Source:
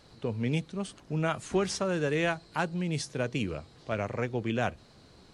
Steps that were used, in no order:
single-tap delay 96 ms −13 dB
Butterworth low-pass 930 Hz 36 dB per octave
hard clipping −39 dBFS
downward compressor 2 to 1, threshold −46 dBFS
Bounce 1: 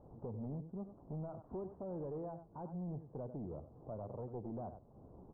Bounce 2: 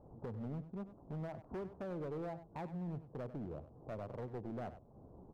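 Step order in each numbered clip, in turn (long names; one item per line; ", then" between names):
downward compressor, then single-tap delay, then hard clipping, then Butterworth low-pass
Butterworth low-pass, then downward compressor, then hard clipping, then single-tap delay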